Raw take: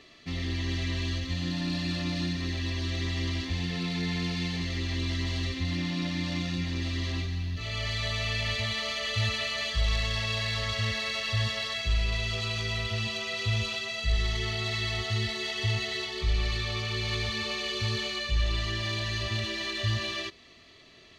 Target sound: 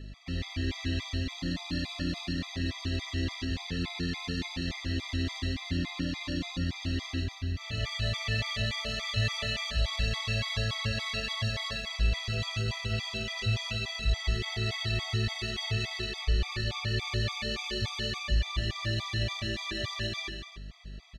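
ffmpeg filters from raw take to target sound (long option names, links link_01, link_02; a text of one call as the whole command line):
ffmpeg -i in.wav -af "aeval=exprs='val(0)+0.00891*(sin(2*PI*50*n/s)+sin(2*PI*2*50*n/s)/2+sin(2*PI*3*50*n/s)/3+sin(2*PI*4*50*n/s)/4+sin(2*PI*5*50*n/s)/5)':channel_layout=same,aecho=1:1:145.8|282.8:0.355|0.282,afftfilt=real='re*gt(sin(2*PI*3.5*pts/sr)*(1-2*mod(floor(b*sr/1024/650),2)),0)':imag='im*gt(sin(2*PI*3.5*pts/sr)*(1-2*mod(floor(b*sr/1024/650),2)),0)':win_size=1024:overlap=0.75" out.wav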